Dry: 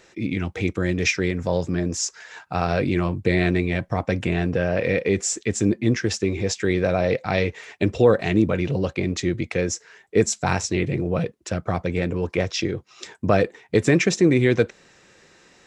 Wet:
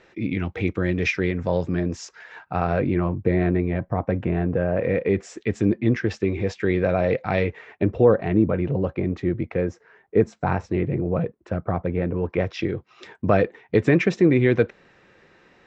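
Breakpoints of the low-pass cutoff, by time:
2.04 s 3 kHz
3.27 s 1.3 kHz
4.74 s 1.3 kHz
5.37 s 2.5 kHz
7.42 s 2.5 kHz
7.88 s 1.4 kHz
12.09 s 1.4 kHz
12.64 s 2.6 kHz

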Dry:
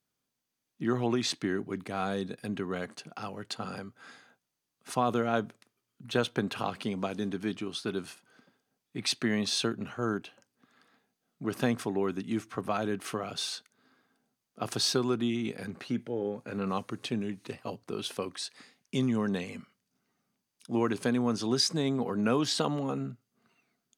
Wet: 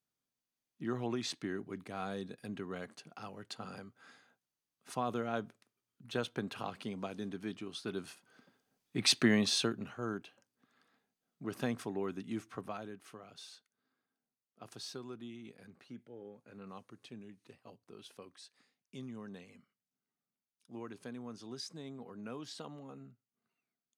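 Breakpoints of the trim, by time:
7.67 s -8 dB
9.19 s +3 dB
9.99 s -7.5 dB
12.54 s -7.5 dB
13.00 s -17.5 dB

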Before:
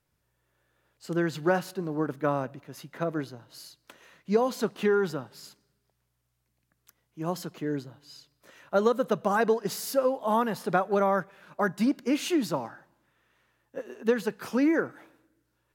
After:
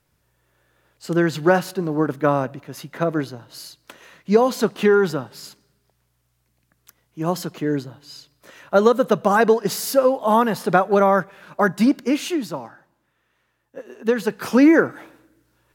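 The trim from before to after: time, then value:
11.96 s +8.5 dB
12.47 s +0.5 dB
13.78 s +0.5 dB
14.53 s +11 dB

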